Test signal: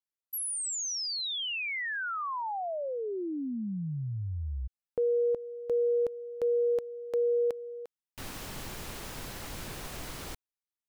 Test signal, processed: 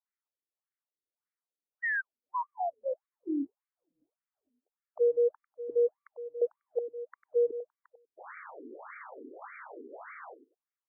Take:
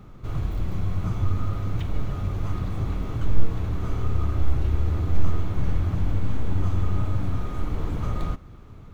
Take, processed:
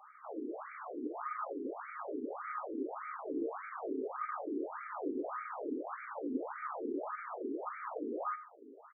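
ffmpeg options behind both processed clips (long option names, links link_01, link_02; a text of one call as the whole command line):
ffmpeg -i in.wav -filter_complex "[0:a]asplit=2[link_01][link_02];[link_02]adelay=97,lowpass=frequency=2000:poles=1,volume=-12dB,asplit=2[link_03][link_04];[link_04]adelay=97,lowpass=frequency=2000:poles=1,volume=0.17[link_05];[link_01][link_03][link_05]amix=inputs=3:normalize=0,afftfilt=real='re*between(b*sr/1024,320*pow(1700/320,0.5+0.5*sin(2*PI*1.7*pts/sr))/1.41,320*pow(1700/320,0.5+0.5*sin(2*PI*1.7*pts/sr))*1.41)':imag='im*between(b*sr/1024,320*pow(1700/320,0.5+0.5*sin(2*PI*1.7*pts/sr))/1.41,320*pow(1700/320,0.5+0.5*sin(2*PI*1.7*pts/sr))*1.41)':win_size=1024:overlap=0.75,volume=4dB" out.wav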